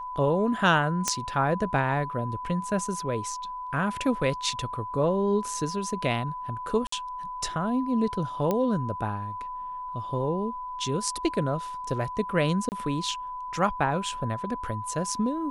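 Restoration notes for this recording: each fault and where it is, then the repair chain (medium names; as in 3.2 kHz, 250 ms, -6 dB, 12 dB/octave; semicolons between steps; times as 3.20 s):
whine 1 kHz -33 dBFS
1.08 s: pop -9 dBFS
6.87–6.92 s: dropout 54 ms
8.51 s: pop -13 dBFS
12.69–12.72 s: dropout 29 ms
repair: de-click; band-stop 1 kHz, Q 30; interpolate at 6.87 s, 54 ms; interpolate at 12.69 s, 29 ms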